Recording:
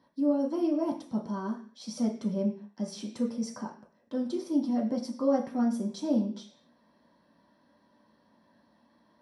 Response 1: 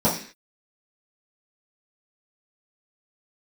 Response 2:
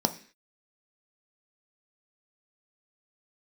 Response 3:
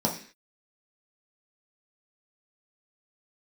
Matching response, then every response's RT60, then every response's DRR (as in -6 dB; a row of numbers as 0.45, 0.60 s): 3; 0.45, 0.45, 0.45 s; -11.0, 7.0, -2.5 dB